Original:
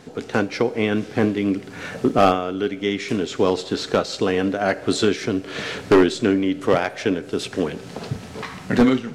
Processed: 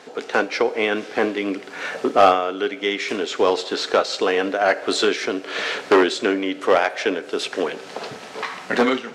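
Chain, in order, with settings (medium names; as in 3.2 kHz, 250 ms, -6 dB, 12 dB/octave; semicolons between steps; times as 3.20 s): high-pass 490 Hz 12 dB/octave; treble shelf 8.7 kHz -12 dB; in parallel at -6 dB: saturation -17 dBFS, distortion -11 dB; on the sum: trim +2 dB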